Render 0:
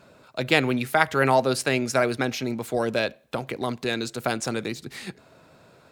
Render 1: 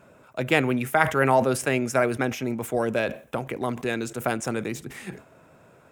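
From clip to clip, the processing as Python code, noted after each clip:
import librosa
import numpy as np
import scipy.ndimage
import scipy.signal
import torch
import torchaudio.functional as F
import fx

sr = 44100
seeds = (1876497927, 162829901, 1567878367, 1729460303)

y = fx.peak_eq(x, sr, hz=4300.0, db=-15.0, octaves=0.54)
y = fx.sustainer(y, sr, db_per_s=150.0)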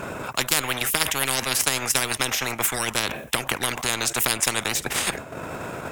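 y = fx.transient(x, sr, attack_db=5, sustain_db=-9)
y = fx.spectral_comp(y, sr, ratio=10.0)
y = F.gain(torch.from_numpy(y), -1.0).numpy()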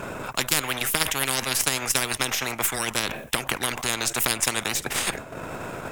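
y = np.where(x < 0.0, 10.0 ** (-3.0 / 20.0) * x, x)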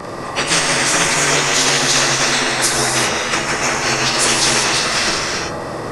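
y = fx.partial_stretch(x, sr, pct=87)
y = fx.rev_gated(y, sr, seeds[0], gate_ms=420, shape='flat', drr_db=-2.5)
y = F.gain(torch.from_numpy(y), 8.0).numpy()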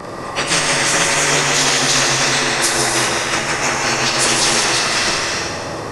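y = fx.echo_feedback(x, sr, ms=159, feedback_pct=53, wet_db=-8.0)
y = F.gain(torch.from_numpy(y), -1.0).numpy()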